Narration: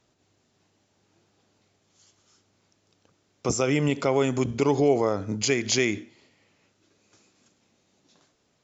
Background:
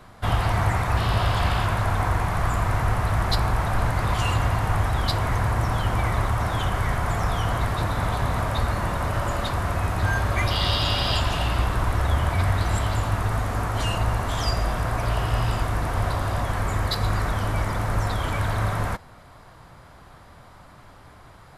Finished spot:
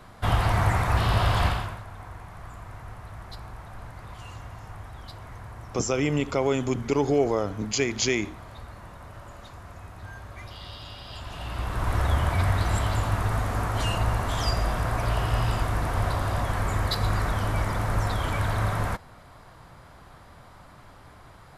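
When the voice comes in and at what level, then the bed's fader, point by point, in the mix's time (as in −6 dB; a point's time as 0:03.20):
2.30 s, −1.5 dB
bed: 0:01.46 −0.5 dB
0:01.85 −18.5 dB
0:11.07 −18.5 dB
0:11.95 −1.5 dB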